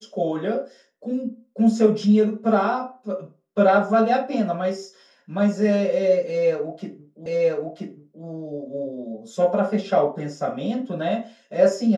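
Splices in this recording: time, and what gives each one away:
0:07.26: the same again, the last 0.98 s

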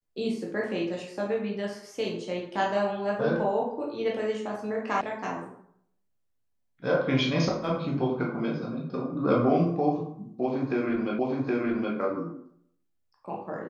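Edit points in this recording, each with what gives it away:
0:05.01: cut off before it has died away
0:11.19: the same again, the last 0.77 s

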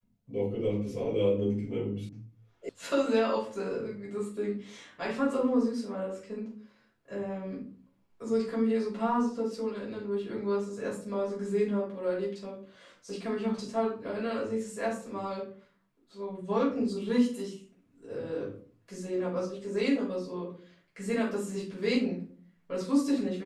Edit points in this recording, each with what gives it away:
0:02.09: cut off before it has died away
0:02.69: cut off before it has died away

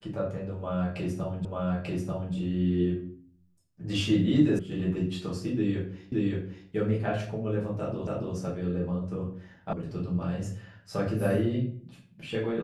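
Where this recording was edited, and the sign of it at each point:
0:01.45: the same again, the last 0.89 s
0:04.59: cut off before it has died away
0:06.12: the same again, the last 0.57 s
0:08.07: the same again, the last 0.28 s
0:09.73: cut off before it has died away

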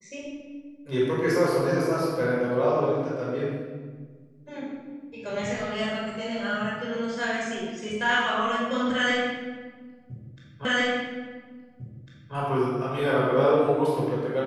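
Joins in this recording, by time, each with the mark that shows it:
0:10.65: the same again, the last 1.7 s

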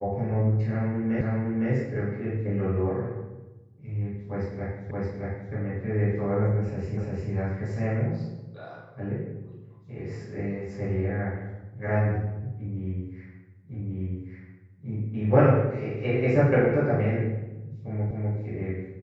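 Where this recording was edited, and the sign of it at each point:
0:01.21: the same again, the last 0.51 s
0:04.91: the same again, the last 0.62 s
0:06.97: the same again, the last 0.35 s
0:13.74: the same again, the last 1.14 s
0:18.11: the same again, the last 0.25 s

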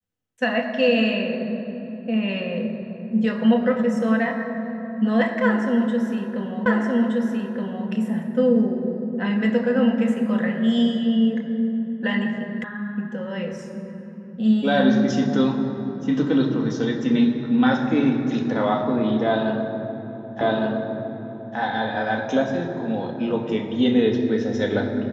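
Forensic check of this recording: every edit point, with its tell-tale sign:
0:06.66: the same again, the last 1.22 s
0:12.64: cut off before it has died away
0:20.41: the same again, the last 1.16 s

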